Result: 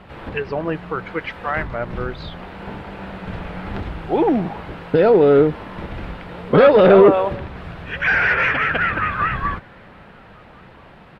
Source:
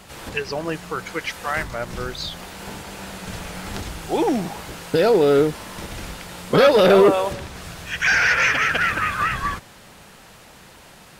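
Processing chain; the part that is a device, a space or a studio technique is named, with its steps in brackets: shout across a valley (air absorption 480 m; outdoor echo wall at 230 m, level -28 dB); gain +4.5 dB

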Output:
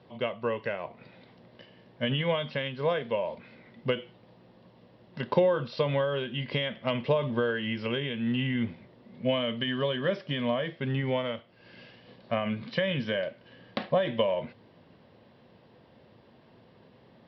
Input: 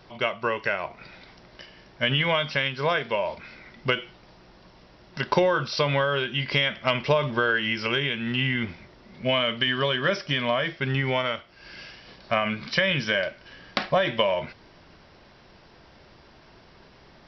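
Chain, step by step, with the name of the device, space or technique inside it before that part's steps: guitar cabinet (speaker cabinet 96–3800 Hz, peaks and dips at 110 Hz +9 dB, 170 Hz +4 dB, 240 Hz +8 dB, 500 Hz +8 dB, 1400 Hz -7 dB, 2300 Hz -5 dB); gain -6.5 dB

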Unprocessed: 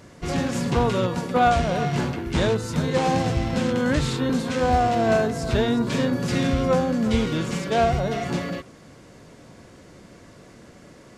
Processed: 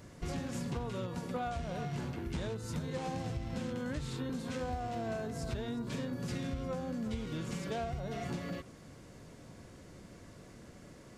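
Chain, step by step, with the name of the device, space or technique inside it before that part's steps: ASMR close-microphone chain (low shelf 150 Hz +7 dB; compressor 6:1, threshold -27 dBFS, peak gain reduction 14 dB; high shelf 9000 Hz +6.5 dB); gain -8 dB

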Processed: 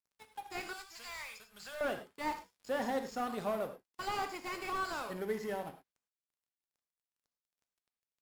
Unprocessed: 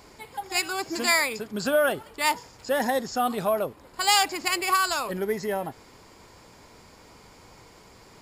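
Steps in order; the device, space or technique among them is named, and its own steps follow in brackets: early transistor amplifier (crossover distortion -41.5 dBFS; slew limiter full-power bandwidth 71 Hz); 0.73–1.81 passive tone stack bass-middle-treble 10-0-10; non-linear reverb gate 0.13 s flat, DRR 7 dB; gain -9 dB

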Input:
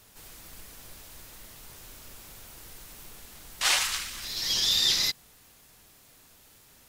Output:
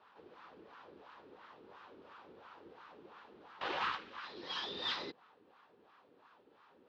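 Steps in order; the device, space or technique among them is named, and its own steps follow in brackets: wah-wah guitar rig (wah 2.9 Hz 370–1200 Hz, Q 2.4; tube stage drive 35 dB, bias 0.55; speaker cabinet 96–4000 Hz, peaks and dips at 130 Hz -7 dB, 660 Hz -8 dB, 2100 Hz -5 dB); gain +10 dB

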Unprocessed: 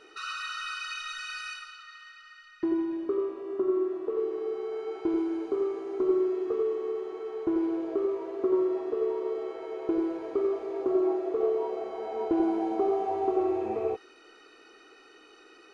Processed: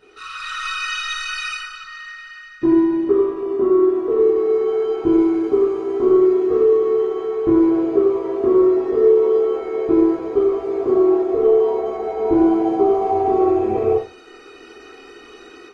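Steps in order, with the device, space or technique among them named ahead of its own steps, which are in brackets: tone controls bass +13 dB, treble 0 dB; 8.81–10.15 doubler 25 ms -4.5 dB; speakerphone in a meeting room (reverb RT60 0.40 s, pre-delay 10 ms, DRR -5 dB; AGC gain up to 9 dB; gain -3.5 dB; Opus 24 kbps 48000 Hz)

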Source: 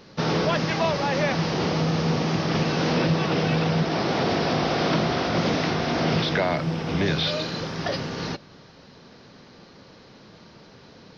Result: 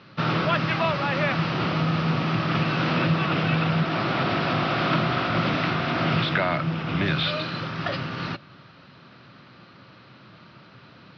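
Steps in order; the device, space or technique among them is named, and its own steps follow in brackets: guitar cabinet (speaker cabinet 96–4100 Hz, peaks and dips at 120 Hz +7 dB, 230 Hz -3 dB, 450 Hz -10 dB, 820 Hz -4 dB, 1300 Hz +8 dB, 2600 Hz +4 dB)

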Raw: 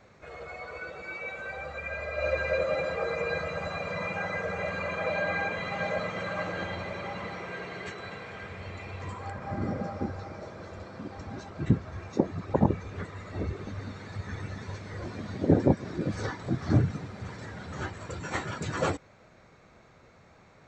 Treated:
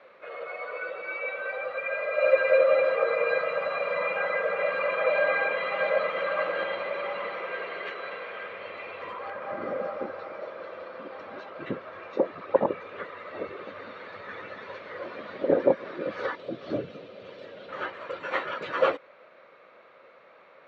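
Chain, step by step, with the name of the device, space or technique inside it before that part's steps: phone earpiece (speaker cabinet 480–3500 Hz, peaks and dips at 540 Hz +9 dB, 780 Hz -5 dB, 1200 Hz +4 dB, 2900 Hz +3 dB); 16.35–17.69 band shelf 1300 Hz -11 dB; gain +3.5 dB

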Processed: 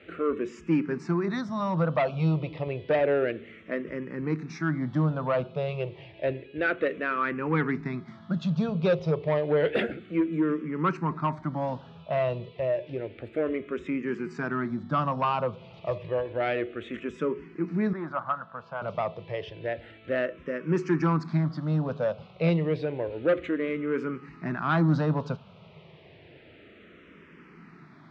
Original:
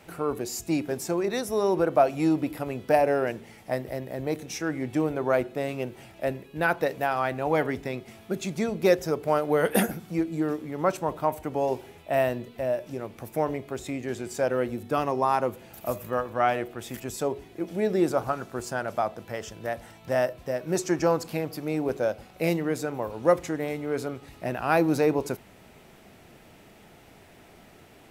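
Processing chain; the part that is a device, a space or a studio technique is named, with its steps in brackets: barber-pole phaser into a guitar amplifier (endless phaser -0.3 Hz; soft clip -20 dBFS, distortion -14 dB; speaker cabinet 87–3700 Hz, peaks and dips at 160 Hz +9 dB, 770 Hz -9 dB, 1200 Hz +4 dB); 17.93–18.82 three-band isolator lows -14 dB, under 540 Hz, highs -23 dB, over 2700 Hz; gain +3.5 dB

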